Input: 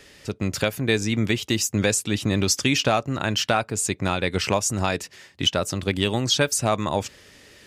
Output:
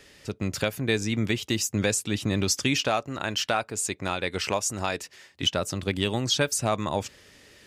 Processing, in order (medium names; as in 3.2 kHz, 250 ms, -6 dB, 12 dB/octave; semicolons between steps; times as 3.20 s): 2.81–5.42 s: peaking EQ 130 Hz -6.5 dB 2.1 oct; trim -3.5 dB